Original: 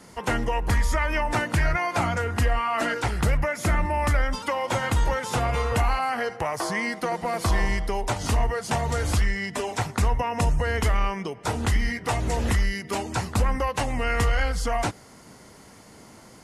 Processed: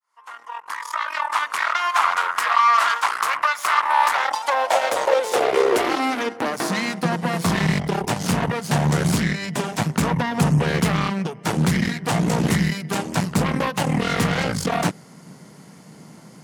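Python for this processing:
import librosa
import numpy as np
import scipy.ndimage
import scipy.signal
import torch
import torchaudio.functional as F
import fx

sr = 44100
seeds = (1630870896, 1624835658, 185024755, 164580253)

y = fx.fade_in_head(x, sr, length_s=2.22)
y = fx.cheby_harmonics(y, sr, harmonics=(6,), levels_db=(-10,), full_scale_db=-12.5)
y = fx.filter_sweep_highpass(y, sr, from_hz=1100.0, to_hz=160.0, start_s=3.86, end_s=7.14, q=4.8)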